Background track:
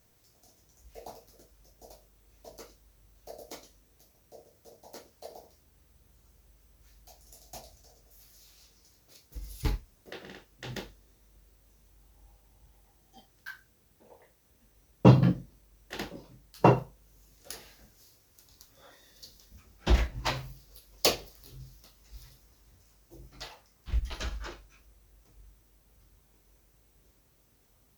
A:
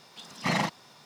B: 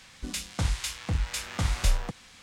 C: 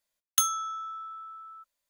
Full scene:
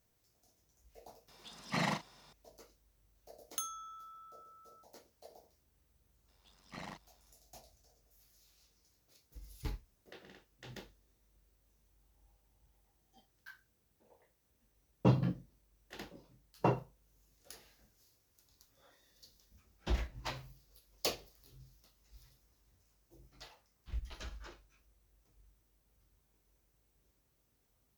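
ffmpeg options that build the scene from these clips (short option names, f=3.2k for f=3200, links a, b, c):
-filter_complex "[1:a]asplit=2[a][b];[0:a]volume=-10.5dB[c];[a]asplit=2[d][e];[e]adelay=41,volume=-9.5dB[f];[d][f]amix=inputs=2:normalize=0[g];[b]tremolo=f=94:d=0.71[h];[g]atrim=end=1.05,asetpts=PTS-STARTPTS,volume=-7.5dB,afade=t=in:d=0.004:c=hsin,afade=t=out:st=1.046:d=0.004:c=hsin,adelay=1280[i];[3:a]atrim=end=1.89,asetpts=PTS-STARTPTS,volume=-15dB,afade=t=in:d=0.004:c=hsin,afade=t=out:st=1.886:d=0.004:c=hsin,adelay=3200[j];[h]atrim=end=1.05,asetpts=PTS-STARTPTS,volume=-17.5dB,afade=t=in:d=0.004:c=hsin,afade=t=out:st=1.046:d=0.004:c=hsin,adelay=6280[k];[c][i][j][k]amix=inputs=4:normalize=0"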